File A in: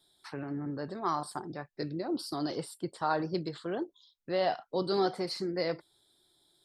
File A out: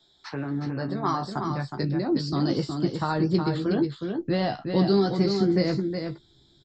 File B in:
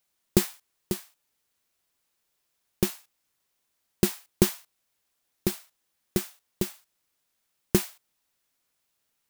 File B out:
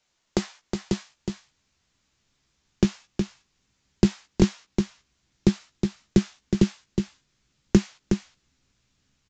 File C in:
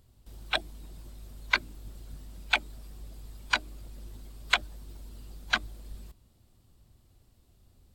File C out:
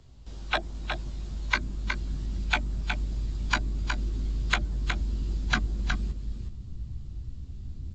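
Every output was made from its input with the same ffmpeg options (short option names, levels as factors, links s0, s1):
-filter_complex "[0:a]asplit=2[s0][s1];[s1]adelay=15,volume=0.473[s2];[s0][s2]amix=inputs=2:normalize=0,acrossover=split=170|1900|6300[s3][s4][s5][s6];[s3]acompressor=threshold=0.00316:ratio=4[s7];[s4]acompressor=threshold=0.0355:ratio=4[s8];[s5]acompressor=threshold=0.00631:ratio=4[s9];[s6]acompressor=threshold=0.00708:ratio=4[s10];[s7][s8][s9][s10]amix=inputs=4:normalize=0,asplit=2[s11][s12];[s12]aecho=0:1:366:0.501[s13];[s11][s13]amix=inputs=2:normalize=0,asubboost=boost=7:cutoff=230,aresample=16000,aresample=44100,volume=2.11"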